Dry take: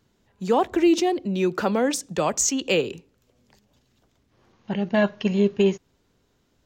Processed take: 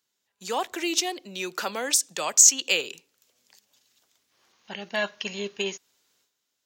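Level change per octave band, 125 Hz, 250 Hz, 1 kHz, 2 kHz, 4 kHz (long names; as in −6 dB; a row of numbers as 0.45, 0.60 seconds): below −15 dB, −14.5 dB, −5.5 dB, +1.0 dB, +4.5 dB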